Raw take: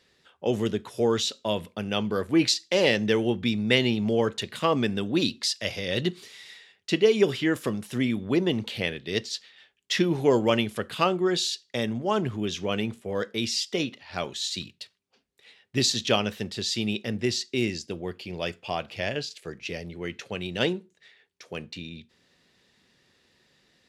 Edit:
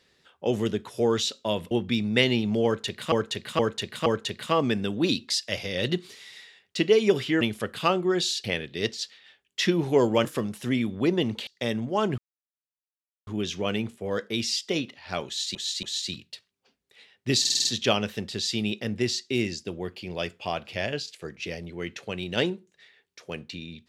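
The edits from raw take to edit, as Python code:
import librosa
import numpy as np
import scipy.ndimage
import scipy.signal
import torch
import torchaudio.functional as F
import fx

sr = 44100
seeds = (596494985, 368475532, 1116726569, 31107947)

y = fx.edit(x, sr, fx.cut(start_s=1.71, length_s=1.54),
    fx.repeat(start_s=4.19, length_s=0.47, count=4),
    fx.swap(start_s=7.54, length_s=1.22, other_s=10.57, other_length_s=1.03),
    fx.insert_silence(at_s=12.31, length_s=1.09),
    fx.repeat(start_s=14.31, length_s=0.28, count=3),
    fx.stutter(start_s=15.88, slice_s=0.05, count=6), tone=tone)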